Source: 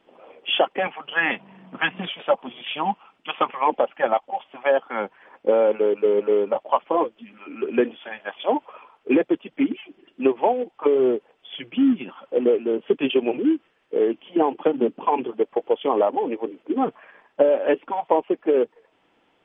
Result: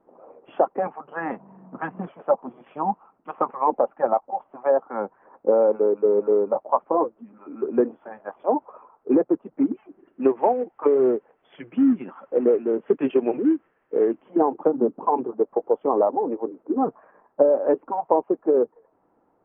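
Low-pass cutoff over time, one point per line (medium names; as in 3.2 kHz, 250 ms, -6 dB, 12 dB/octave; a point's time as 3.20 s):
low-pass 24 dB/octave
9.71 s 1.2 kHz
10.31 s 1.8 kHz
14.05 s 1.8 kHz
14.62 s 1.2 kHz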